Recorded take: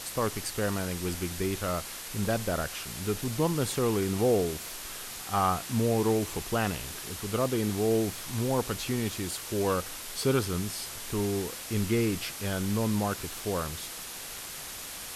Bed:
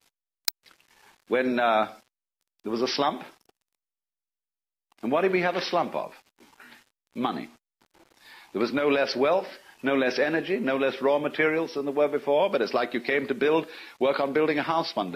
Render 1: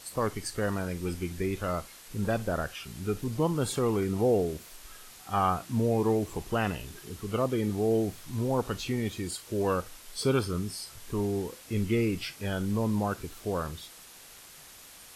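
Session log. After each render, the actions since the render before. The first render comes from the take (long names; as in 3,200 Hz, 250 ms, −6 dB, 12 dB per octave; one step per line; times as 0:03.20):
noise reduction from a noise print 10 dB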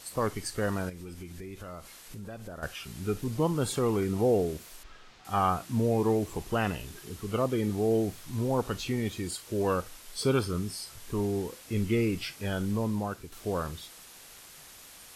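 0:00.89–0:02.63: downward compressor 4 to 1, threshold −40 dBFS
0:04.83–0:05.25: high-frequency loss of the air 170 metres
0:12.64–0:13.32: fade out, to −7 dB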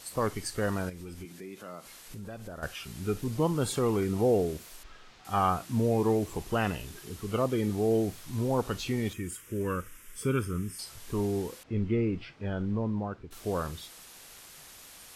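0:01.25–0:01.86: high-pass filter 160 Hz 24 dB per octave
0:09.13–0:10.79: phaser with its sweep stopped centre 1,800 Hz, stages 4
0:11.63–0:13.31: head-to-tape spacing loss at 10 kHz 33 dB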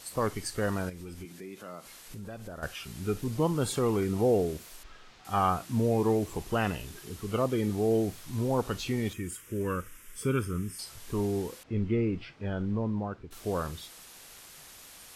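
no processing that can be heard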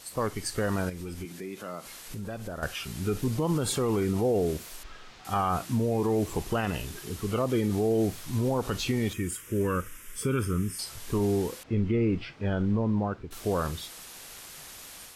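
automatic gain control gain up to 5 dB
brickwall limiter −18 dBFS, peak gain reduction 8 dB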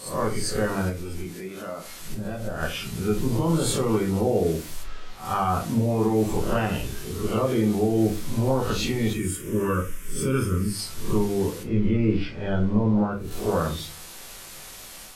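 peak hold with a rise ahead of every peak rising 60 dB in 0.43 s
rectangular room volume 120 cubic metres, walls furnished, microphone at 1.1 metres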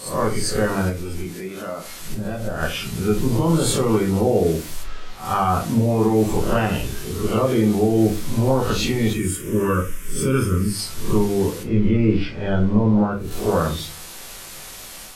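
level +4.5 dB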